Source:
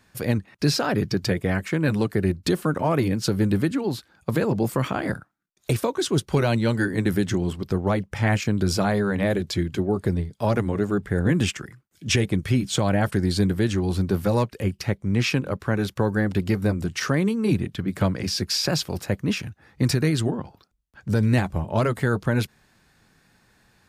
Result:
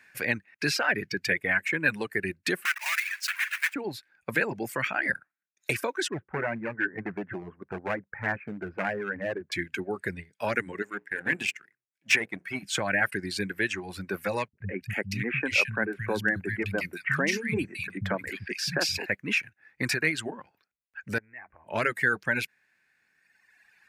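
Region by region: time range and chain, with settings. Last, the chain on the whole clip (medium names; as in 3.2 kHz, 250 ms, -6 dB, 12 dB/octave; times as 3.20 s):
2.65–3.76 s: block-companded coder 3-bit + high-pass 1.2 kHz 24 dB/octave
6.08–9.52 s: low-pass 1.4 kHz 24 dB/octave + overload inside the chain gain 18 dB
10.82–12.63 s: high-pass 140 Hz + hum notches 60/120/180/240/300/360/420/480/540 Hz + power-law waveshaper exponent 1.4
14.48–19.06 s: bass shelf 280 Hz +8 dB + three bands offset in time lows, mids, highs 90/310 ms, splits 190/2000 Hz
21.18–21.67 s: inverse Chebyshev low-pass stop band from 5.3 kHz, stop band 50 dB + peaking EQ 170 Hz -14.5 dB 0.37 oct + compression 12:1, threshold -34 dBFS
whole clip: reverb removal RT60 1.9 s; high-pass 420 Hz 6 dB/octave; high-order bell 2 kHz +12.5 dB 1 oct; trim -3.5 dB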